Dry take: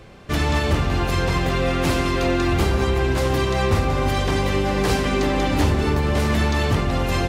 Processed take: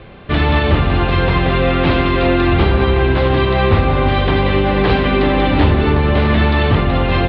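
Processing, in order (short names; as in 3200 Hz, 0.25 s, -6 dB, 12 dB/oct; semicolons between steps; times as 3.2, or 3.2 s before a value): steep low-pass 3900 Hz 48 dB/oct; gain +6.5 dB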